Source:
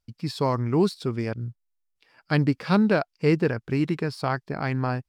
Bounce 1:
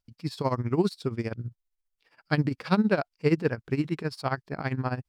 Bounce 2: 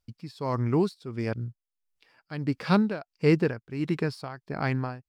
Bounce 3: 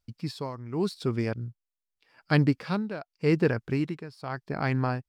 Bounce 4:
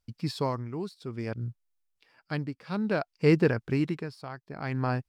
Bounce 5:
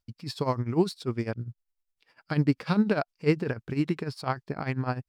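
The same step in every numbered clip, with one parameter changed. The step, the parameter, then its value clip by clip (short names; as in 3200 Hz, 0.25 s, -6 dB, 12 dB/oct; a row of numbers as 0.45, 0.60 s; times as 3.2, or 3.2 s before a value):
tremolo, rate: 15, 1.5, 0.85, 0.58, 10 Hz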